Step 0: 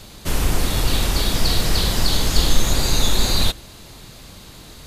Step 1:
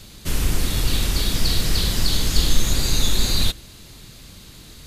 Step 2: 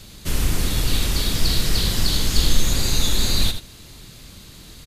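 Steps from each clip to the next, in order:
bell 770 Hz -7.5 dB 1.7 oct; gain -1 dB
echo 81 ms -10 dB

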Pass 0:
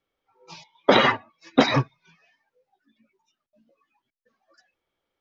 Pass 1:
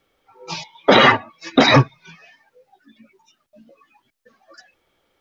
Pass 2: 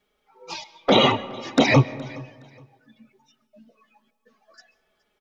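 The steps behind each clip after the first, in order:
notch 1000 Hz, Q 21; in parallel at 0 dB: compressor, threshold -26 dBFS, peak gain reduction 14.5 dB; on the sum: limiter -10 dBFS, peak gain reduction 8.5 dB; gain +8.5 dB
envelope flanger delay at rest 4.8 ms, full sweep at -8.5 dBFS; feedback echo 0.418 s, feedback 26%, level -23 dB; reverb RT60 1.5 s, pre-delay 0.1 s, DRR 18.5 dB; gain -2 dB

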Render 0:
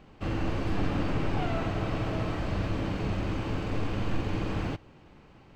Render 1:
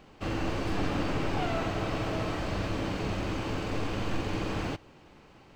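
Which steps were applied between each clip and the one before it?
tone controls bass -5 dB, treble +5 dB; gain +1.5 dB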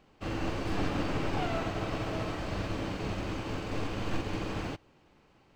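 upward expander 1.5:1, over -42 dBFS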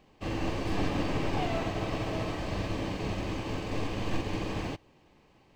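notch 1400 Hz, Q 5; gain +1.5 dB

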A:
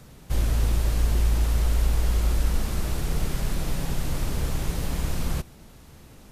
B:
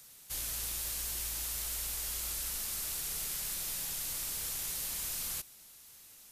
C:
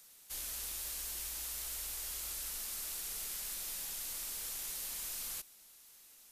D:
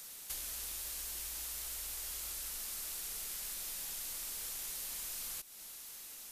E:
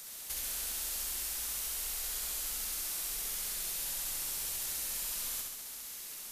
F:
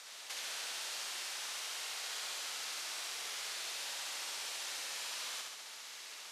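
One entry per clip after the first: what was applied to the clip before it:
pre-emphasis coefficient 0.97; gain +3.5 dB
bell 100 Hz -15 dB 1.1 oct; gain -4 dB
compressor 6:1, threshold -50 dBFS, peak gain reduction 11 dB; gain +10 dB
flutter echo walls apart 11.4 m, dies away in 1.3 s; gain +2 dB
BPF 580–4600 Hz; gain +4.5 dB

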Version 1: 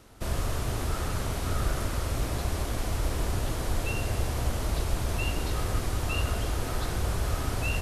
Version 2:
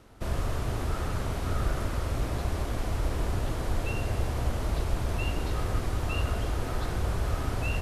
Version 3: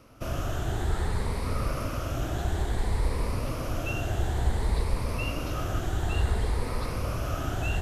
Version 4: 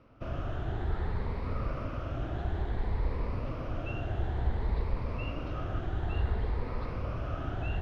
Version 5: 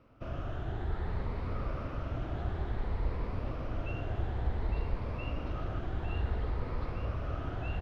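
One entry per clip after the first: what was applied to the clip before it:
high shelf 3700 Hz -8 dB
moving spectral ripple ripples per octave 0.92, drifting +0.57 Hz, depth 8 dB
air absorption 310 m; gain -4 dB
echo 0.857 s -7.5 dB; gain -2.5 dB

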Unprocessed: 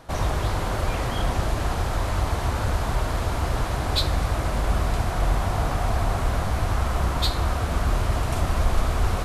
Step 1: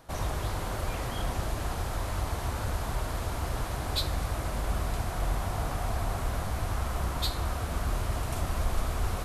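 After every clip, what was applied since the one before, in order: high shelf 9800 Hz +10.5 dB; gain -7.5 dB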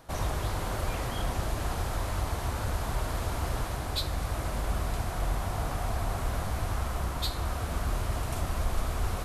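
vocal rider 0.5 s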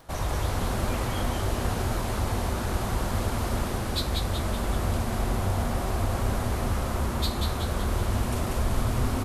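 crackle 19/s -43 dBFS; frequency-shifting echo 0.188 s, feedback 54%, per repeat -140 Hz, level -3.5 dB; gain +1.5 dB

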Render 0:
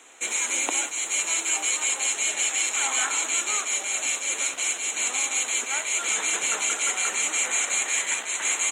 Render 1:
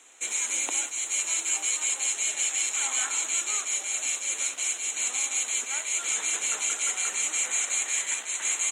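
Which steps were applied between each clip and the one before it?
bell 7600 Hz +6.5 dB 2.5 oct; gain -8 dB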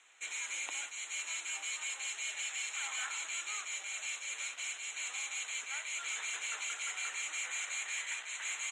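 soft clip -19 dBFS, distortion -20 dB; short-mantissa float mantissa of 4-bit; band-pass 2000 Hz, Q 0.84; gain -3.5 dB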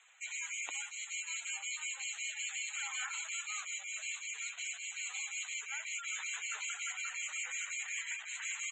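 spectral gate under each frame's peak -15 dB strong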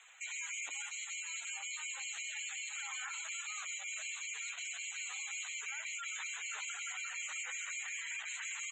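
limiter -38 dBFS, peak gain reduction 11.5 dB; gain +4.5 dB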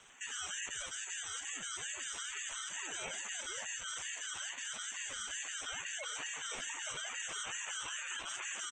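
bell 3500 Hz -13.5 dB 0.38 oct; echo 82 ms -19.5 dB; ring modulator with a swept carrier 670 Hz, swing 35%, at 2.3 Hz; gain +4.5 dB

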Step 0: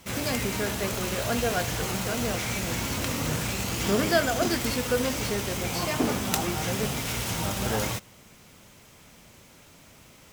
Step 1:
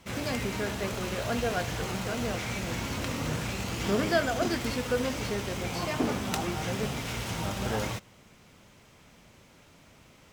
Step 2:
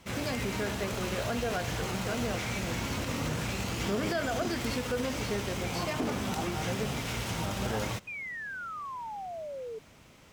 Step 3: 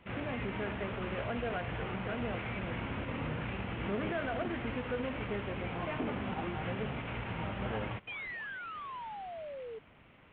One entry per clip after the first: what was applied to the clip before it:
high shelf 7400 Hz -11.5 dB; gain -2.5 dB
limiter -22 dBFS, peak gain reduction 9 dB; painted sound fall, 8.07–9.79, 430–2500 Hz -39 dBFS
CVSD 16 kbps; gain -3.5 dB

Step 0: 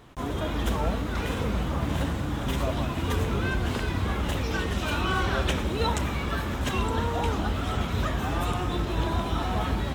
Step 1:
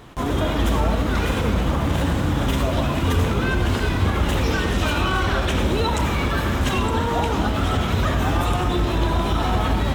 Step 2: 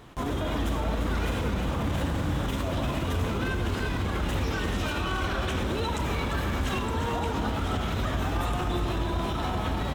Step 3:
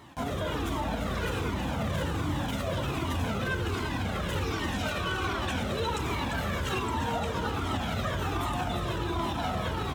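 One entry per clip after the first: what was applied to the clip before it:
limiter -20.5 dBFS, peak gain reduction 7 dB; on a send at -8 dB: reverb, pre-delay 80 ms; on the sum: gain +8 dB
limiter -15 dBFS, peak gain reduction 6 dB; echo 0.349 s -8 dB; gain -5.5 dB
HPF 100 Hz 12 dB/oct; cascading flanger falling 1.3 Hz; gain +4 dB

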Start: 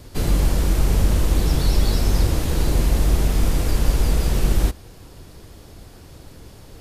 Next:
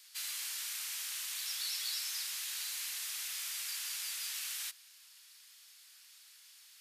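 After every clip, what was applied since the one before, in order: Bessel high-pass 2600 Hz, order 4; gain -4 dB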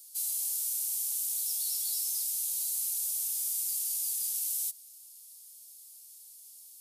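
EQ curve 820 Hz 0 dB, 1500 Hz -27 dB, 10000 Hz +10 dB; gain +1.5 dB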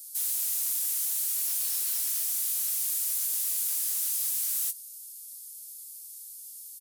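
wavefolder -32 dBFS; tilt +3 dB/oct; doubler 17 ms -8 dB; gain -3.5 dB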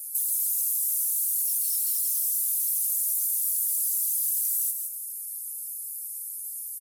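formant sharpening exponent 2; compressor, threshold -32 dBFS, peak gain reduction 6 dB; feedback echo 0.165 s, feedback 22%, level -6 dB; gain +7.5 dB

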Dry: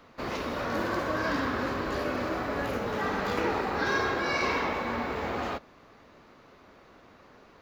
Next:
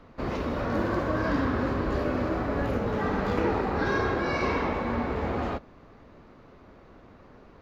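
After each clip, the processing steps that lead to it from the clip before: tilt -2.5 dB/oct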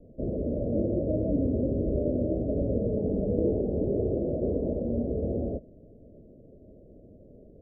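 Chebyshev low-pass 630 Hz, order 6; gain +1.5 dB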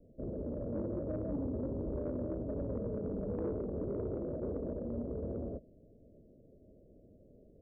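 soft clip -20 dBFS, distortion -19 dB; gain -8.5 dB

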